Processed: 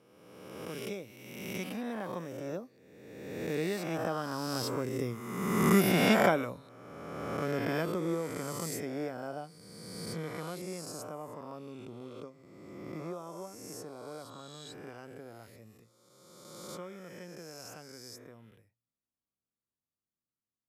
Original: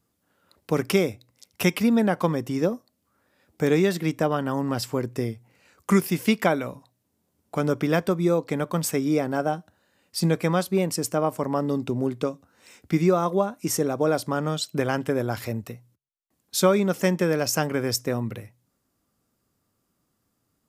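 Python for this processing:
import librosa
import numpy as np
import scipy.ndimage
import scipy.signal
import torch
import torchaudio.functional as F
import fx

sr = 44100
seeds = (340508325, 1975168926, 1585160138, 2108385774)

y = fx.spec_swells(x, sr, rise_s=1.73)
y = fx.doppler_pass(y, sr, speed_mps=12, closest_m=12.0, pass_at_s=5.89)
y = y * librosa.db_to_amplitude(-6.5)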